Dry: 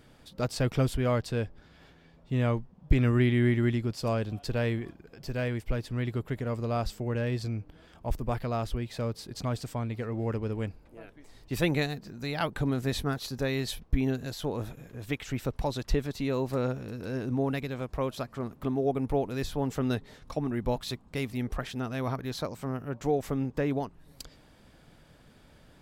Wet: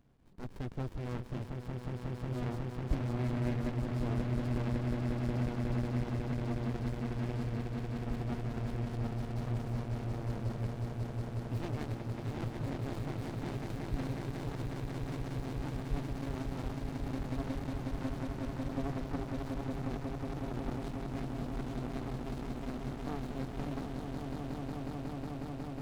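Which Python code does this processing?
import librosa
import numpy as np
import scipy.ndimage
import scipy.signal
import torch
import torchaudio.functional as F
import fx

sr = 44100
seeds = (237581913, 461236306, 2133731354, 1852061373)

y = fx.echo_swell(x, sr, ms=182, loudest=8, wet_db=-7)
y = fx.running_max(y, sr, window=65)
y = y * librosa.db_to_amplitude(-9.0)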